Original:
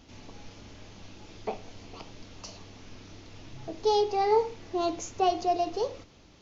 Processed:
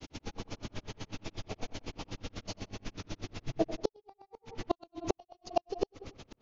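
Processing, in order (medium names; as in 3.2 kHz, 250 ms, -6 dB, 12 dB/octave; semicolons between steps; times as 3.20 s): granulator 69 ms, grains 8.1 per s, pitch spread up and down by 0 st; filtered feedback delay 93 ms, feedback 25%, low-pass 1.8 kHz, level -13 dB; inverted gate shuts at -25 dBFS, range -42 dB; trim +11 dB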